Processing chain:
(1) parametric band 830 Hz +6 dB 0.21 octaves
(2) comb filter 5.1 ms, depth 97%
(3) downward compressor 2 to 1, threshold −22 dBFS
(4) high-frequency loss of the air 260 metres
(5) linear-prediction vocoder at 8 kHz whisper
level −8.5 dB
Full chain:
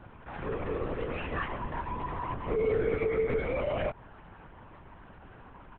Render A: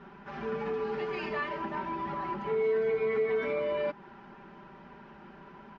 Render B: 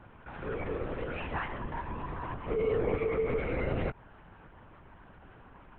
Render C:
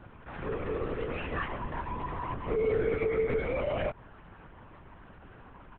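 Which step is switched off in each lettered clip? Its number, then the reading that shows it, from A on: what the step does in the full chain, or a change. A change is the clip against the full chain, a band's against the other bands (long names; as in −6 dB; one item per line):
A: 5, change in crest factor −2.5 dB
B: 2, 125 Hz band +2.0 dB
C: 1, change in momentary loudness spread −4 LU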